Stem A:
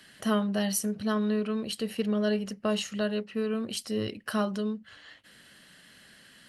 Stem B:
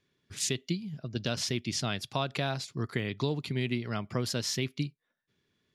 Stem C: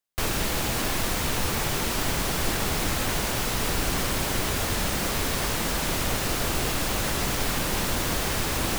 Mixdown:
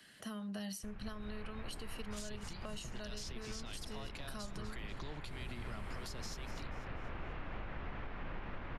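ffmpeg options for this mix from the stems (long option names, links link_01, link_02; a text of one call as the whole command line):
ffmpeg -i stem1.wav -i stem2.wav -i stem3.wav -filter_complex "[0:a]volume=-6dB,asplit=2[link_01][link_02];[1:a]alimiter=level_in=1.5dB:limit=-24dB:level=0:latency=1,volume=-1.5dB,acrossover=split=1500[link_03][link_04];[link_03]aeval=exprs='val(0)*(1-0.5/2+0.5/2*cos(2*PI*1.8*n/s))':channel_layout=same[link_05];[link_04]aeval=exprs='val(0)*(1-0.5/2-0.5/2*cos(2*PI*1.8*n/s))':channel_layout=same[link_06];[link_05][link_06]amix=inputs=2:normalize=0,adelay=1800,volume=-0.5dB,asplit=2[link_07][link_08];[link_08]volume=-15.5dB[link_09];[2:a]lowpass=frequency=2500:width=0.5412,lowpass=frequency=2500:width=1.3066,aemphasis=mode=reproduction:type=bsi,adelay=650,volume=-6dB,asplit=2[link_10][link_11];[link_11]volume=-12.5dB[link_12];[link_02]apad=whole_len=416011[link_13];[link_10][link_13]sidechaincompress=threshold=-56dB:ratio=4:attack=5.3:release=1430[link_14];[link_09][link_12]amix=inputs=2:normalize=0,aecho=0:1:243|486|729|972|1215|1458:1|0.43|0.185|0.0795|0.0342|0.0147[link_15];[link_01][link_07][link_14][link_15]amix=inputs=4:normalize=0,acrossover=split=190|700|5400[link_16][link_17][link_18][link_19];[link_16]acompressor=threshold=-42dB:ratio=4[link_20];[link_17]acompressor=threshold=-52dB:ratio=4[link_21];[link_18]acompressor=threshold=-47dB:ratio=4[link_22];[link_19]acompressor=threshold=-48dB:ratio=4[link_23];[link_20][link_21][link_22][link_23]amix=inputs=4:normalize=0,alimiter=level_in=9.5dB:limit=-24dB:level=0:latency=1:release=172,volume=-9.5dB" out.wav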